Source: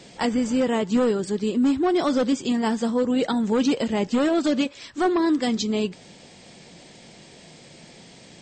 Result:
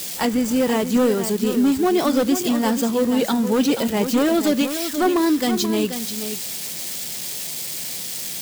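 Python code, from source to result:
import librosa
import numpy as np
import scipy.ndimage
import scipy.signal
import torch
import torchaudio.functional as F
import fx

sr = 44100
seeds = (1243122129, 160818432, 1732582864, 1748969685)

p1 = x + 0.5 * 10.0 ** (-23.5 / 20.0) * np.diff(np.sign(x), prepend=np.sign(x[:1]))
p2 = p1 + fx.echo_single(p1, sr, ms=482, db=-9.5, dry=0)
y = p2 * 10.0 ** (2.5 / 20.0)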